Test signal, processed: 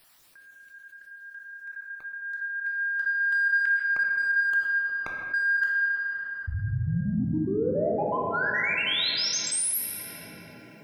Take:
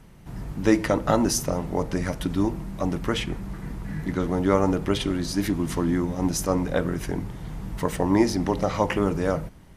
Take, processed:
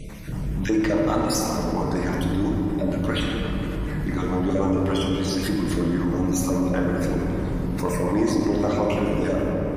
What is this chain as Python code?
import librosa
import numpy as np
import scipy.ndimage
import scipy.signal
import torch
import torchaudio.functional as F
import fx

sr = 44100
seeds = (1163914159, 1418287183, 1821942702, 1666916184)

p1 = fx.spec_dropout(x, sr, seeds[0], share_pct=34)
p2 = 10.0 ** (-23.0 / 20.0) * np.tanh(p1 / 10.0 ** (-23.0 / 20.0))
p3 = p1 + F.gain(torch.from_numpy(p2), -5.0).numpy()
p4 = fx.room_shoebox(p3, sr, seeds[1], volume_m3=150.0, walls='hard', distance_m=0.51)
p5 = fx.env_flatten(p4, sr, amount_pct=50)
y = F.gain(torch.from_numpy(p5), -8.0).numpy()